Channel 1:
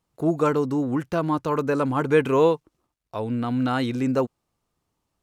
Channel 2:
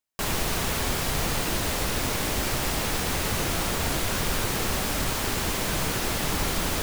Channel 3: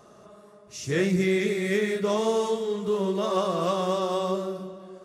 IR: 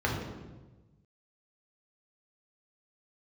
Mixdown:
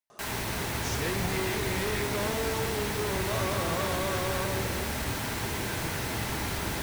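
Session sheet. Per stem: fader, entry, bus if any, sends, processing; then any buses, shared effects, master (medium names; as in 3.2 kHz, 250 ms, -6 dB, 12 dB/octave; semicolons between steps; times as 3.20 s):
mute
-9.0 dB, 0.00 s, send -8.5 dB, none
0.0 dB, 0.10 s, no send, saturation -27.5 dBFS, distortion -9 dB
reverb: on, RT60 1.2 s, pre-delay 3 ms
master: bass shelf 280 Hz -8.5 dB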